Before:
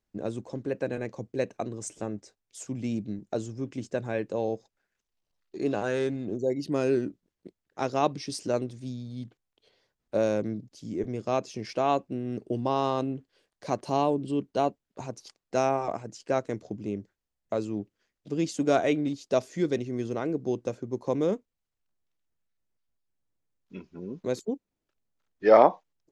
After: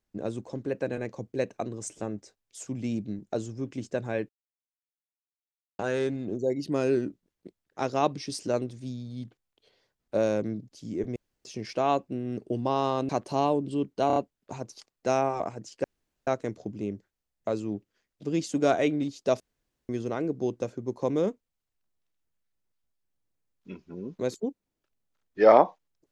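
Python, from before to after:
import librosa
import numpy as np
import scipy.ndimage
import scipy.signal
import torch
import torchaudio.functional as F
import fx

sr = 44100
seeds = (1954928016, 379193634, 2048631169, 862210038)

y = fx.edit(x, sr, fx.silence(start_s=4.29, length_s=1.5),
    fx.room_tone_fill(start_s=11.16, length_s=0.29),
    fx.cut(start_s=13.09, length_s=0.57),
    fx.stutter(start_s=14.64, slice_s=0.03, count=4),
    fx.insert_room_tone(at_s=16.32, length_s=0.43),
    fx.room_tone_fill(start_s=19.45, length_s=0.49), tone=tone)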